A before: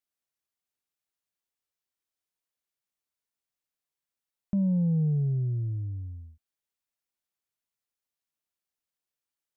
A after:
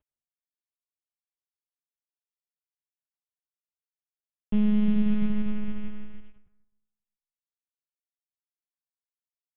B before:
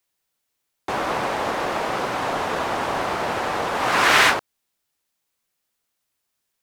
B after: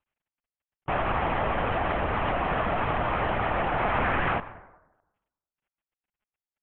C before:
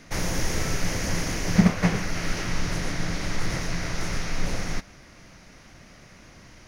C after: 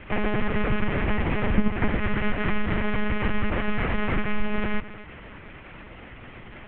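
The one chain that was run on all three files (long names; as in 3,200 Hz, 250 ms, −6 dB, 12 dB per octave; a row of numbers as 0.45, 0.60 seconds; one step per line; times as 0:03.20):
variable-slope delta modulation 16 kbit/s
downward compressor 2 to 1, threshold −27 dBFS
dense smooth reverb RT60 1 s, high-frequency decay 0.45×, pre-delay 80 ms, DRR 15 dB
one-pitch LPC vocoder at 8 kHz 210 Hz
loudness normalisation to −27 LKFS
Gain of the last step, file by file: +6.5, +2.0, +6.5 decibels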